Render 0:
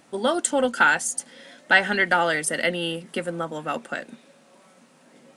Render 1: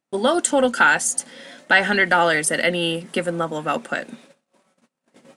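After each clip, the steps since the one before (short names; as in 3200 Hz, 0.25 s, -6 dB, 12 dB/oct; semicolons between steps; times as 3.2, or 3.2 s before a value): gate -51 dBFS, range -33 dB; in parallel at +0.5 dB: limiter -14.5 dBFS, peak gain reduction 12 dB; on the sum: gain -1 dB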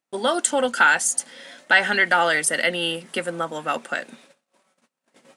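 low shelf 440 Hz -9 dB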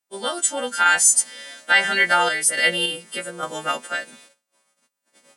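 frequency quantiser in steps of 2 st; random-step tremolo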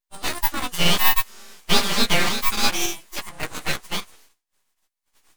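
full-wave rectifier; in parallel at -4 dB: bit-crush 4-bit; on the sum: gain -3 dB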